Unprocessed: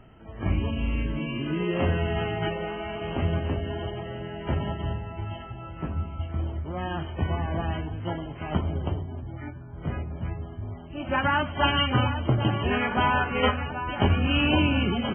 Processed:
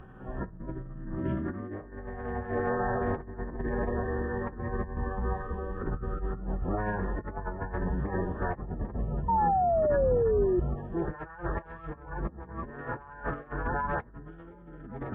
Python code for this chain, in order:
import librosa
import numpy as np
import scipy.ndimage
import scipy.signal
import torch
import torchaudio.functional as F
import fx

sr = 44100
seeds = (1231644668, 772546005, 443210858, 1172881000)

y = fx.over_compress(x, sr, threshold_db=-32.0, ratio=-0.5)
y = fx.pitch_keep_formants(y, sr, semitones=-9.5)
y = fx.spec_paint(y, sr, seeds[0], shape='fall', start_s=9.28, length_s=1.32, low_hz=350.0, high_hz=940.0, level_db=-25.0)